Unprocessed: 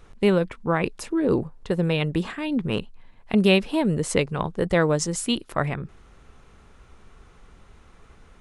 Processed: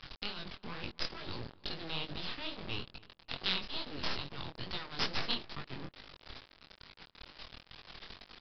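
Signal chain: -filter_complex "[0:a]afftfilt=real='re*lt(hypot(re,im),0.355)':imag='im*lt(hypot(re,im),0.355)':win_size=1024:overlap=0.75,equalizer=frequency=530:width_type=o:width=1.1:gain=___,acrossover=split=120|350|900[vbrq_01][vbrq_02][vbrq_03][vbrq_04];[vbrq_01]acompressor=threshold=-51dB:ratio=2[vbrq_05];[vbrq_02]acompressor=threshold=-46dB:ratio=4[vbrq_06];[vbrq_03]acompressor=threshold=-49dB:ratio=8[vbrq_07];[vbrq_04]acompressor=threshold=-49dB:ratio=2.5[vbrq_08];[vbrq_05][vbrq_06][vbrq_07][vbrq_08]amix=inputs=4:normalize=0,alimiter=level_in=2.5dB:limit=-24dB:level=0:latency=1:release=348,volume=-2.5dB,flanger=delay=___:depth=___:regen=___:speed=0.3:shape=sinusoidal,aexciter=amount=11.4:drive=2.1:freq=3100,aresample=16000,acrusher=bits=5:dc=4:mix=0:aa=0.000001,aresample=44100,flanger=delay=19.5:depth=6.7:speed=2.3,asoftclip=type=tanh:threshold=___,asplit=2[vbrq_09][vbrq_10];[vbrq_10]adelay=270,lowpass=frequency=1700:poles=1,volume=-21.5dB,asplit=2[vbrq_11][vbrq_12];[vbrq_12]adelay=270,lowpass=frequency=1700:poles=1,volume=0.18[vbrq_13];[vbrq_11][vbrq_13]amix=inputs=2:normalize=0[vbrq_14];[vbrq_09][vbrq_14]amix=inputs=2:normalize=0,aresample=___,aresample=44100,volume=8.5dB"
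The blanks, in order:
-12, 7.4, 1.2, 86, -27dB, 11025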